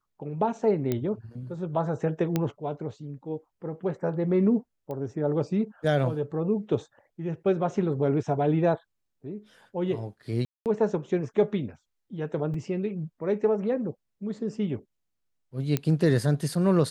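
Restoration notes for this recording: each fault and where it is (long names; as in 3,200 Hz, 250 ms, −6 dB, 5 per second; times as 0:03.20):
0:00.92: click −14 dBFS
0:02.36: click −12 dBFS
0:04.91: click −25 dBFS
0:10.45–0:10.66: drop-out 208 ms
0:12.54: drop-out 3.5 ms
0:15.77: click −12 dBFS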